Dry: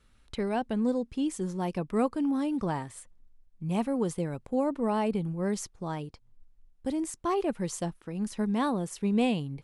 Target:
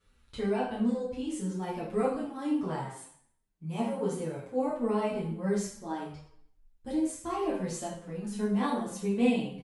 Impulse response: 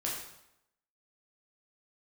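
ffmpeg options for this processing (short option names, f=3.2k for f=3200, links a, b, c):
-filter_complex "[0:a]asettb=1/sr,asplit=3[a][b][c];[a]atrim=end=2.244[d];[b]atrim=start=2.24:end=4.61,asetpts=PTS-STARTPTS,afade=t=in:d=0.004:c=qsin,afade=t=out:st=2.366:d=0.004:c=qsin,highpass=f=130:p=1[e];[c]atrim=start=4.606[f];[d][e]acrossfade=d=0.004:c1=hsin:c2=qsin[g];[g][f]acrossfade=d=0.004:c1=qsin:c2=hsin[h];[1:a]atrim=start_sample=2205,asetrate=57330,aresample=44100[i];[h][i]afir=irnorm=-1:irlink=0,asplit=2[j][k];[k]adelay=7.1,afreqshift=-2[l];[j][l]amix=inputs=2:normalize=1"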